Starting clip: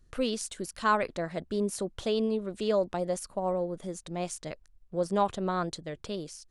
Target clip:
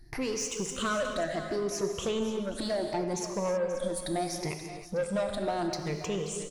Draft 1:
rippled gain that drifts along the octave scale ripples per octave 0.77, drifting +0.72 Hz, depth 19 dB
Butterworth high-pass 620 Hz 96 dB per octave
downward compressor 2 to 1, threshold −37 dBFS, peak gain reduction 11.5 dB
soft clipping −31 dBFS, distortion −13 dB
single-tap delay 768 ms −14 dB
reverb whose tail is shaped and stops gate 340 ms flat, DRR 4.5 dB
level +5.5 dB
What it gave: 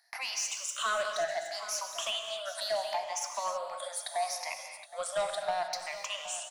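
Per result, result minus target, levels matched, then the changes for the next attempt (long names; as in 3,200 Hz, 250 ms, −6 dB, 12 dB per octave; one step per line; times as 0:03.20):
echo 238 ms late; 500 Hz band −3.5 dB
change: single-tap delay 530 ms −14 dB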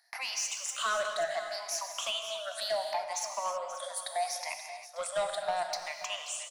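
500 Hz band −3.5 dB
remove: Butterworth high-pass 620 Hz 96 dB per octave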